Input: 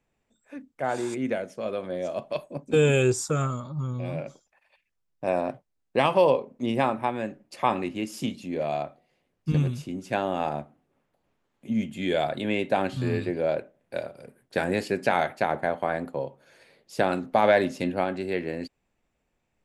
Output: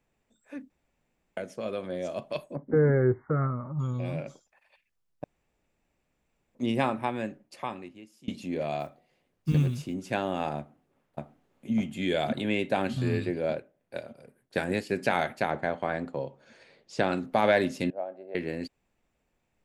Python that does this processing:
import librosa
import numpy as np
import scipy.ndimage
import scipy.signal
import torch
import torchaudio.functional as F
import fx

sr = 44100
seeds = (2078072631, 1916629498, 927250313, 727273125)

y = fx.brickwall_lowpass(x, sr, high_hz=2200.0, at=(2.54, 3.78), fade=0.02)
y = fx.block_float(y, sr, bits=7, at=(8.8, 9.96))
y = fx.echo_throw(y, sr, start_s=10.57, length_s=1.15, ms=600, feedback_pct=60, wet_db=-0.5)
y = fx.upward_expand(y, sr, threshold_db=-35.0, expansion=1.5, at=(13.39, 14.96))
y = fx.lowpass(y, sr, hz=7600.0, slope=24, at=(15.5, 17.17))
y = fx.bandpass_q(y, sr, hz=620.0, q=5.0, at=(17.9, 18.35))
y = fx.edit(y, sr, fx.room_tone_fill(start_s=0.7, length_s=0.67),
    fx.room_tone_fill(start_s=5.24, length_s=1.31),
    fx.fade_out_to(start_s=7.24, length_s=1.04, curve='qua', floor_db=-24.0), tone=tone)
y = fx.dynamic_eq(y, sr, hz=770.0, q=0.7, threshold_db=-36.0, ratio=4.0, max_db=-4)